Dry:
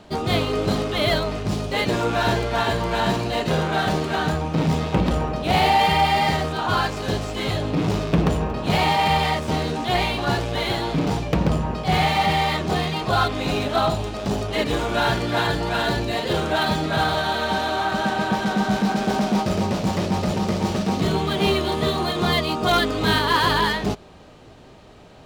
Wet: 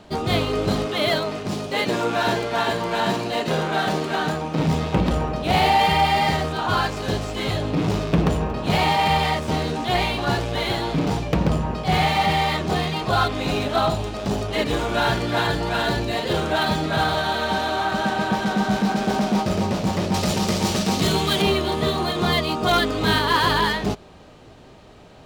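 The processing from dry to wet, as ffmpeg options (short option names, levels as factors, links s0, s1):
-filter_complex "[0:a]asettb=1/sr,asplit=3[s0][s1][s2];[s0]atrim=end=0.864[s3];[s1]atrim=start=0.86:end=4.59,asetpts=PTS-STARTPTS,afade=t=in:d=0.004:c=qsin,afade=t=out:st=3.726:d=0.004:c=qsin,highpass=160[s4];[s2]atrim=start=4.586[s5];[s3][s4]acrossfade=d=0.004:c1=hsin:c2=qsin[s6];[s6][s5]acrossfade=d=0.004:c1=qsin:c2=hsin,asettb=1/sr,asplit=3[s7][s8][s9];[s7]atrim=end=20.144[s10];[s8]atrim=start=20.14:end=21.42,asetpts=PTS-STARTPTS,afade=t=in:d=0.004:c=qsin,afade=t=out:st=1.276:d=0.004:c=qsin,highshelf=f=2800:g=11.5[s11];[s9]atrim=start=21.416[s12];[s10][s11]acrossfade=d=0.004:c1=hsin:c2=qsin[s13];[s13][s12]acrossfade=d=0.004:c1=qsin:c2=hsin"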